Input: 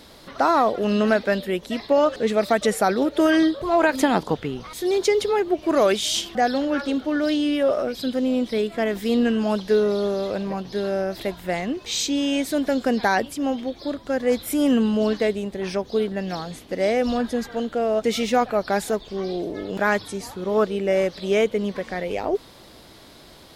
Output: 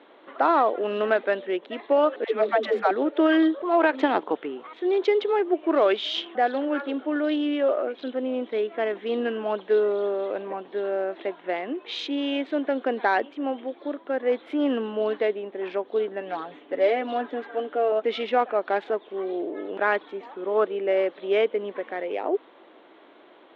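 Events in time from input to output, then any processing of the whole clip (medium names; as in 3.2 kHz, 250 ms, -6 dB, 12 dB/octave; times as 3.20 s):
2.24–2.91 s: phase dispersion lows, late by 144 ms, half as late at 340 Hz
16.20–17.92 s: comb 7 ms
whole clip: local Wiener filter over 9 samples; Chebyshev band-pass 310–3400 Hz, order 3; trim -1 dB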